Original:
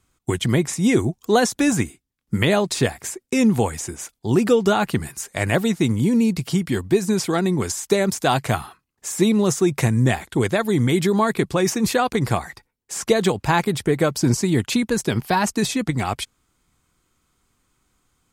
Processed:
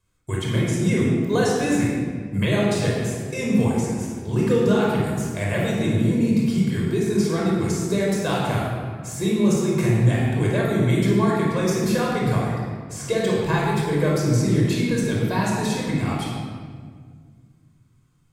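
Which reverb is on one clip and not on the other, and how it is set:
rectangular room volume 2,600 cubic metres, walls mixed, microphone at 5.3 metres
level −11 dB

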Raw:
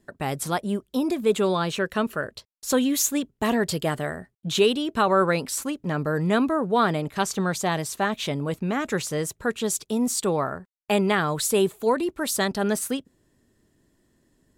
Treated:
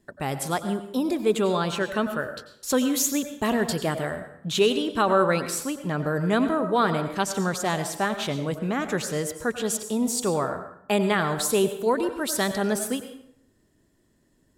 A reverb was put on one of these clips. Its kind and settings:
dense smooth reverb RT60 0.69 s, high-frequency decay 0.75×, pre-delay 80 ms, DRR 9 dB
level −1 dB

